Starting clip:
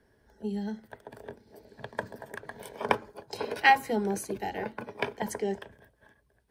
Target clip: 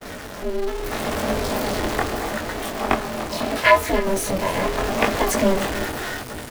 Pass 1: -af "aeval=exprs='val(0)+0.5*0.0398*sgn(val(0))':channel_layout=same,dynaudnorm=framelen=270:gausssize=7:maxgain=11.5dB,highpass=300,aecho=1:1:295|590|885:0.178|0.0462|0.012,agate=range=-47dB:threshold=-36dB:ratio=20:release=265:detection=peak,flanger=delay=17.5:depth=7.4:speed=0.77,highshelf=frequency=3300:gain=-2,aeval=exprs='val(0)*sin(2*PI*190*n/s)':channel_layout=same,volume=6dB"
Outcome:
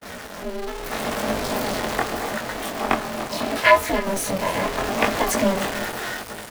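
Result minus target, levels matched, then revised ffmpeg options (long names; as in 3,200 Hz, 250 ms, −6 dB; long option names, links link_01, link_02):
125 Hz band −2.5 dB
-af "aeval=exprs='val(0)+0.5*0.0398*sgn(val(0))':channel_layout=same,dynaudnorm=framelen=270:gausssize=7:maxgain=11.5dB,highpass=98,aecho=1:1:295|590|885:0.178|0.0462|0.012,agate=range=-47dB:threshold=-36dB:ratio=20:release=265:detection=peak,flanger=delay=17.5:depth=7.4:speed=0.77,highshelf=frequency=3300:gain=-2,aeval=exprs='val(0)*sin(2*PI*190*n/s)':channel_layout=same,volume=6dB"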